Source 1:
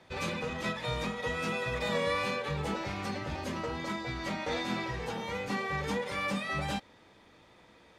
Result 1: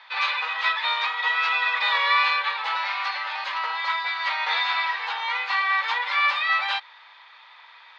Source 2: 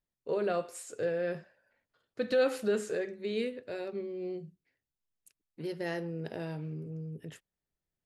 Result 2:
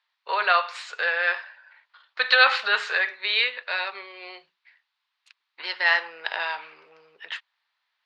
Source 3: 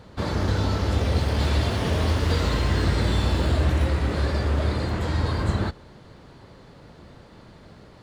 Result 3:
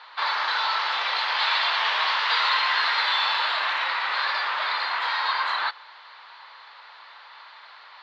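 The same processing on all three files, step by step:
Chebyshev band-pass 940–4200 Hz, order 3; normalise loudness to -23 LUFS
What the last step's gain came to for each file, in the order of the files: +14.0 dB, +22.5 dB, +11.0 dB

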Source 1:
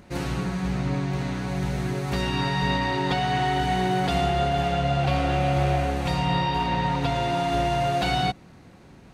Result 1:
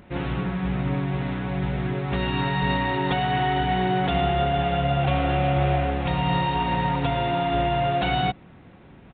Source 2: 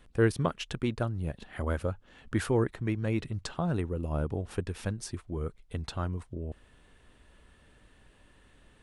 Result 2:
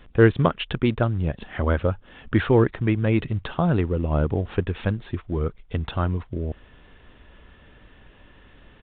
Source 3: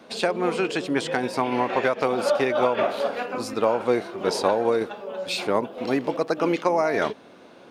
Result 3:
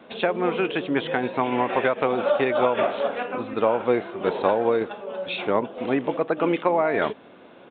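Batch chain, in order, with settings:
in parallel at -12 dB: short-mantissa float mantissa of 2-bit; on the sum: resampled via 8 kHz; normalise loudness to -24 LUFS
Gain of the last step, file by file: -1.0 dB, +7.0 dB, -1.5 dB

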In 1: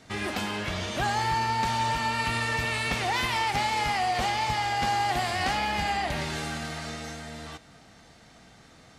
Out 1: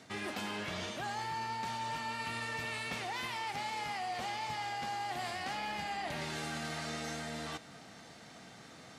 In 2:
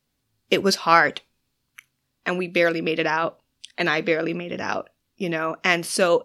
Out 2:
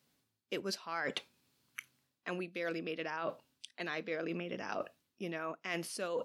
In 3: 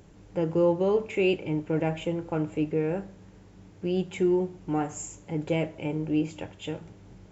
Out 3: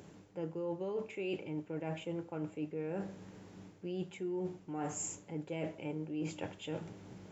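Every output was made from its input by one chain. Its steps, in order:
high-pass 130 Hz 12 dB/octave; reverse; compression 8:1, threshold -37 dBFS; reverse; trim +1 dB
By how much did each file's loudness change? -10.5 LU, -18.0 LU, -12.0 LU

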